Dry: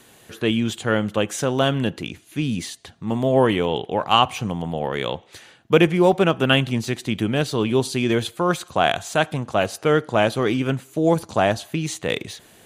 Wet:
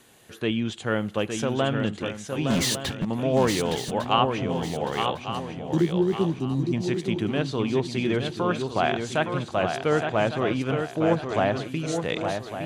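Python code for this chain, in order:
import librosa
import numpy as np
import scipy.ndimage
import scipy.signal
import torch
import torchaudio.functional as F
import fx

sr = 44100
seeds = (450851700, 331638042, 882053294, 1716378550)

y = fx.spec_repair(x, sr, seeds[0], start_s=5.74, length_s=0.97, low_hz=390.0, high_hz=3700.0, source='before')
y = fx.env_lowpass_down(y, sr, base_hz=2800.0, full_db=-14.0)
y = fx.leveller(y, sr, passes=5, at=(2.5, 3.05))
y = fx.echo_swing(y, sr, ms=1153, ratio=3, feedback_pct=31, wet_db=-6.0)
y = fx.band_squash(y, sr, depth_pct=70, at=(5.73, 6.39))
y = y * librosa.db_to_amplitude(-5.0)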